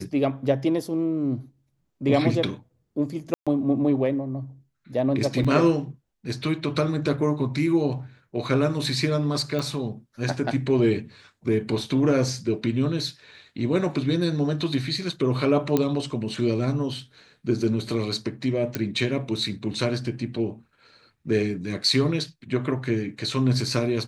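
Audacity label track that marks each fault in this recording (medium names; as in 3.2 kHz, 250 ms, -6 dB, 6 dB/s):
3.340000	3.470000	dropout 126 ms
5.440000	5.450000	dropout 5.9 ms
9.590000	9.590000	pop -17 dBFS
15.770000	15.770000	pop -9 dBFS
18.750000	18.750000	pop -11 dBFS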